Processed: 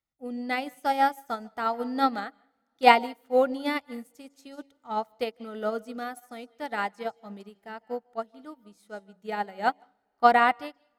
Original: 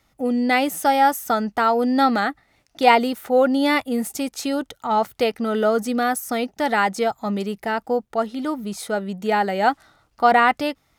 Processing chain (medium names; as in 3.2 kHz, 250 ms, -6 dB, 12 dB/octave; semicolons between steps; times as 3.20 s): de-hum 93.08 Hz, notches 11; on a send at -14 dB: reverberation, pre-delay 147 ms; on the sum: upward expansion 2.5:1, over -30 dBFS